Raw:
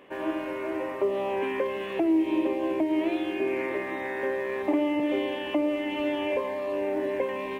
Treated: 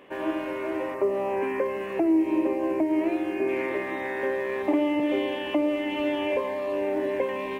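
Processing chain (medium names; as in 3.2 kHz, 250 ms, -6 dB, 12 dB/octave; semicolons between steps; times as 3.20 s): 0.94–3.49 s: peaking EQ 3.4 kHz -15 dB 0.44 oct; trim +1.5 dB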